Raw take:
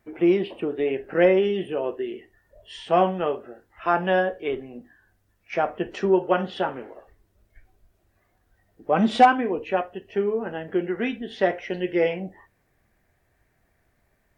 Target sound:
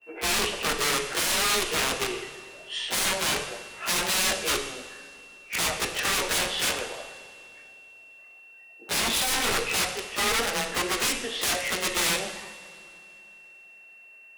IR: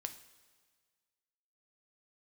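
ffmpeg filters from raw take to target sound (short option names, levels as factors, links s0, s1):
-filter_complex "[0:a]highpass=470,aeval=exprs='(tanh(7.94*val(0)+0.4)-tanh(0.4))/7.94':c=same,aeval=exprs='val(0)+0.002*sin(2*PI*2700*n/s)':c=same,aeval=exprs='(mod(28.2*val(0)+1,2)-1)/28.2':c=same,afreqshift=15,asplit=2[s0][s1];[1:a]atrim=start_sample=2205,asetrate=23373,aresample=44100,adelay=17[s2];[s1][s2]afir=irnorm=-1:irlink=0,volume=2.66[s3];[s0][s3]amix=inputs=2:normalize=0,adynamicequalizer=threshold=0.0112:dfrequency=1600:dqfactor=0.7:tfrequency=1600:tqfactor=0.7:attack=5:release=100:ratio=0.375:range=2:mode=boostabove:tftype=highshelf,volume=0.668"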